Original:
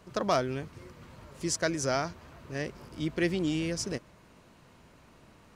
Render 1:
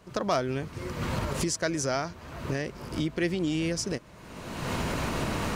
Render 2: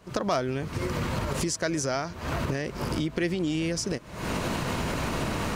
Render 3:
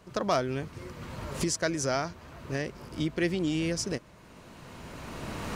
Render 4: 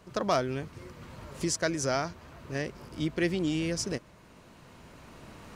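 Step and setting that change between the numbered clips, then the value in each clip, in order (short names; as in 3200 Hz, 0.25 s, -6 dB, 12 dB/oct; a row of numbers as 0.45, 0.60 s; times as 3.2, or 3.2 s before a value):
recorder AGC, rising by: 35, 89, 14, 5.8 dB/s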